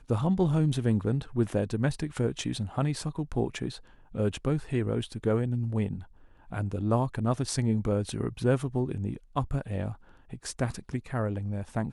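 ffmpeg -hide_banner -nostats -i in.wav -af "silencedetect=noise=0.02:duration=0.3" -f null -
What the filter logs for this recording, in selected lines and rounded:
silence_start: 3.75
silence_end: 4.15 | silence_duration: 0.39
silence_start: 5.99
silence_end: 6.52 | silence_duration: 0.53
silence_start: 9.93
silence_end: 10.33 | silence_duration: 0.40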